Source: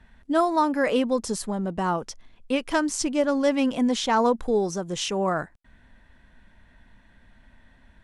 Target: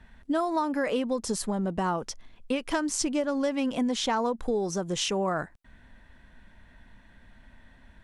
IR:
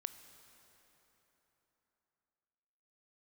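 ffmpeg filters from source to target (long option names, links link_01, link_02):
-af "acompressor=threshold=-25dB:ratio=6,volume=1dB"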